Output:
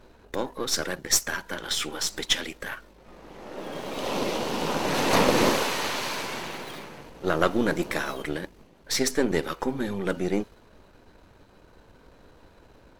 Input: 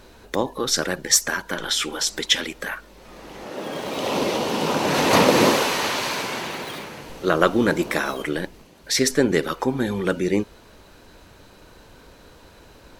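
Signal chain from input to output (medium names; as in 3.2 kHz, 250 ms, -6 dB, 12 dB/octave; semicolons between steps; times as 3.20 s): partial rectifier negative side -7 dB; tape noise reduction on one side only decoder only; trim -2.5 dB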